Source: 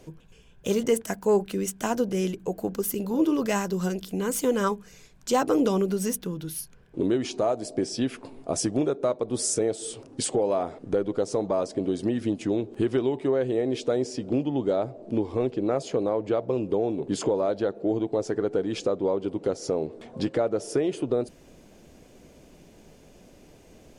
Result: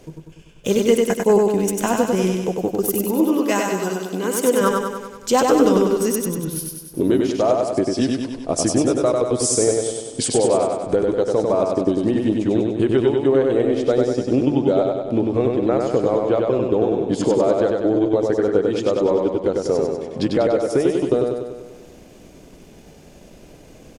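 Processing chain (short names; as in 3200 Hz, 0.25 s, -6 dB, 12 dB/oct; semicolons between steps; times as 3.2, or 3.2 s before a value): transient shaper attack +1 dB, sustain -8 dB; 3.04–4.61 HPF 240 Hz 12 dB/oct; feedback echo 97 ms, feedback 59%, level -3 dB; gain +5.5 dB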